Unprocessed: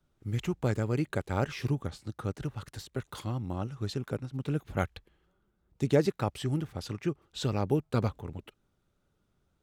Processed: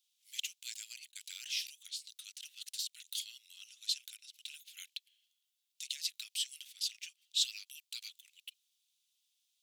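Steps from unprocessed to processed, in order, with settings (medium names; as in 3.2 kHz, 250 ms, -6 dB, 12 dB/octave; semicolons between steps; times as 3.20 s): peak limiter -20.5 dBFS, peak gain reduction 8.5 dB; steep high-pass 2.9 kHz 36 dB/octave; 0.82–1.48 s: compressor with a negative ratio -57 dBFS, ratio -0.5; trim +9 dB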